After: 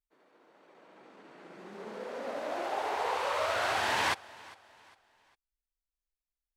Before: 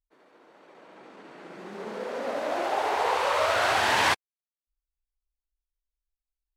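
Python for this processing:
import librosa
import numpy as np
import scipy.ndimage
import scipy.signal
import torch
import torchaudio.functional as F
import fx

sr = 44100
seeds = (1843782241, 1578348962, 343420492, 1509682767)

y = fx.echo_feedback(x, sr, ms=403, feedback_pct=38, wet_db=-21.5)
y = y * 10.0 ** (-6.5 / 20.0)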